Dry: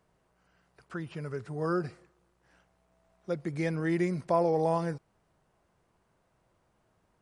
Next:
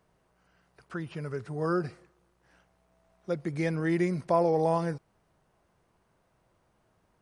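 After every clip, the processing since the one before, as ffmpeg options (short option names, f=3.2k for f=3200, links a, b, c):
-af "bandreject=f=7.4k:w=18,volume=1.5dB"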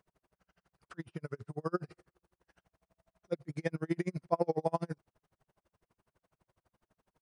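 -af "aeval=exprs='val(0)*pow(10,-40*(0.5-0.5*cos(2*PI*12*n/s))/20)':c=same"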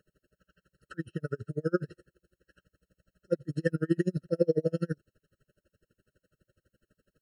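-af "afftfilt=real='re*eq(mod(floor(b*sr/1024/640),2),0)':imag='im*eq(mod(floor(b*sr/1024/640),2),0)':win_size=1024:overlap=0.75,volume=6.5dB"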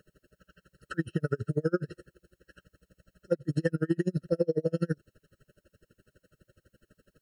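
-af "acompressor=threshold=-32dB:ratio=5,volume=8dB"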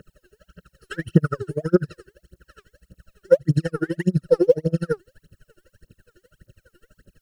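-af "aphaser=in_gain=1:out_gain=1:delay=2.9:decay=0.8:speed=1.7:type=triangular,volume=3.5dB"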